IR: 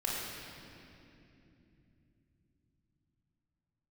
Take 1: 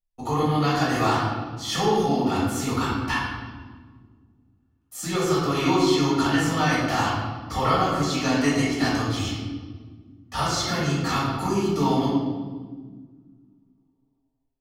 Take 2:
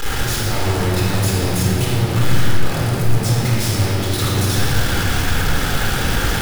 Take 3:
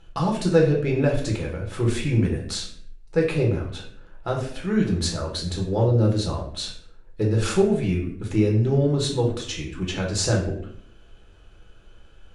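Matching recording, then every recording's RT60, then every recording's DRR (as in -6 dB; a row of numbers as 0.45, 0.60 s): 2; 1.5, 2.9, 0.60 s; -8.5, -5.0, -1.5 dB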